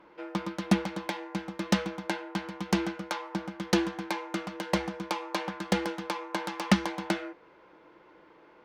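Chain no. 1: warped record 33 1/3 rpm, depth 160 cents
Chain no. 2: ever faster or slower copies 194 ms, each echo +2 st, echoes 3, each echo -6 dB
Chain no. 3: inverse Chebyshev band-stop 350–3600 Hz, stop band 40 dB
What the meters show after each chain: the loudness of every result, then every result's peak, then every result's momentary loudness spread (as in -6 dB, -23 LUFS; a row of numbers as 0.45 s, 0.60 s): -32.0 LUFS, -30.5 LUFS, -39.5 LUFS; -6.5 dBFS, -6.5 dBFS, -15.0 dBFS; 9 LU, 8 LU, 15 LU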